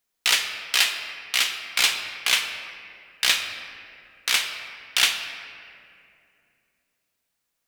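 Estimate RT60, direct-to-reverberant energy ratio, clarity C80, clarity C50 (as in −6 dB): 2.6 s, 4.0 dB, 7.5 dB, 6.5 dB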